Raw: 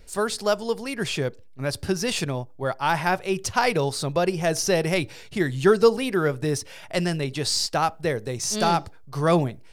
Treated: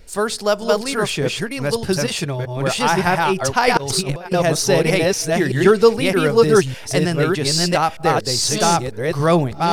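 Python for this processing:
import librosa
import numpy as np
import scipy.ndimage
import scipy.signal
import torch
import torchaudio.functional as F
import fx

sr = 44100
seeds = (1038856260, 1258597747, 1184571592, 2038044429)

y = fx.reverse_delay(x, sr, ms=613, wet_db=-1.0)
y = fx.notch_comb(y, sr, f0_hz=250.0, at=(2.06, 2.57))
y = fx.over_compress(y, sr, threshold_db=-27.0, ratio=-0.5, at=(3.77, 4.33))
y = y * librosa.db_to_amplitude(4.5)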